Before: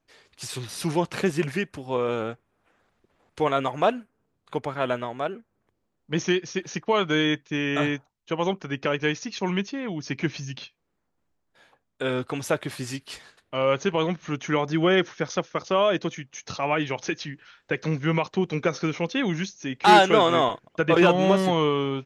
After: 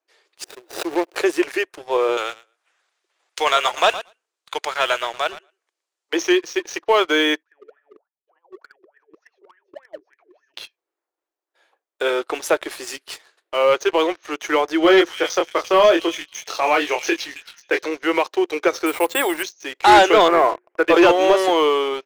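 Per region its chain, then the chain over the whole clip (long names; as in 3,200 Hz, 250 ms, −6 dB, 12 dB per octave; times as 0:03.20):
0:00.44–0:01.16: running median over 41 samples + power curve on the samples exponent 1.4 + background raised ahead of every attack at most 92 dB per second
0:02.17–0:06.13: meter weighting curve ITU-R 468 + repeating echo 115 ms, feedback 18%, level −14.5 dB
0:07.43–0:10.54: parametric band 530 Hz +8 dB 1.4 octaves + compressor whose output falls as the input rises −27 dBFS, ratio −0.5 + LFO wah 3.4 Hz 350–1,800 Hz, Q 21
0:14.81–0:17.82: double-tracking delay 24 ms −5 dB + echo through a band-pass that steps 269 ms, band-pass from 3,300 Hz, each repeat 0.7 octaves, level −7.5 dB
0:18.86–0:19.43: parametric band 900 Hz +6.5 dB 1.2 octaves + bad sample-rate conversion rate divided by 4×, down filtered, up hold
0:20.28–0:20.85: Butterworth low-pass 2,300 Hz + mains-hum notches 60/120/180/240/300/360 Hz
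whole clip: elliptic high-pass filter 330 Hz, stop band 40 dB; high-shelf EQ 9,800 Hz +2.5 dB; leveller curve on the samples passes 2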